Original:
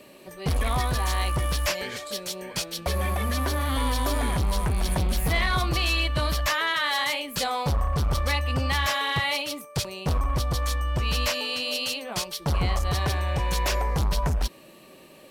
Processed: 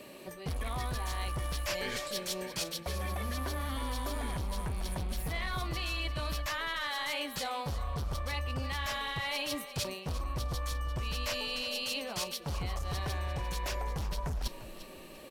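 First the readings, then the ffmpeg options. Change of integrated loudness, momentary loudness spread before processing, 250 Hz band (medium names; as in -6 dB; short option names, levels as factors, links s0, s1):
-9.5 dB, 7 LU, -9.5 dB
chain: -filter_complex "[0:a]areverse,acompressor=threshold=0.0251:ratio=10,areverse,asplit=4[s0][s1][s2][s3];[s1]adelay=348,afreqshift=-32,volume=0.211[s4];[s2]adelay=696,afreqshift=-64,volume=0.0653[s5];[s3]adelay=1044,afreqshift=-96,volume=0.0204[s6];[s0][s4][s5][s6]amix=inputs=4:normalize=0"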